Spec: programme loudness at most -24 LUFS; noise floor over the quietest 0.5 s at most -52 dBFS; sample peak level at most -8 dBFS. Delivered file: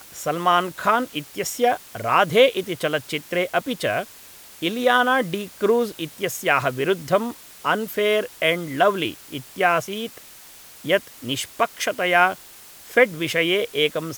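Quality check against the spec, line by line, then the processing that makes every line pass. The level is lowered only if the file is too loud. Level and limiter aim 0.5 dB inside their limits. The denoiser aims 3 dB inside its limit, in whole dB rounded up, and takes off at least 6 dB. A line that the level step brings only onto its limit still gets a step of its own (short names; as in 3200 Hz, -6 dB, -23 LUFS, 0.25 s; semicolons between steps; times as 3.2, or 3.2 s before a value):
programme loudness -21.5 LUFS: fail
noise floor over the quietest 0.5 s -45 dBFS: fail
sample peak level -2.0 dBFS: fail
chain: denoiser 7 dB, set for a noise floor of -45 dBFS; gain -3 dB; limiter -8.5 dBFS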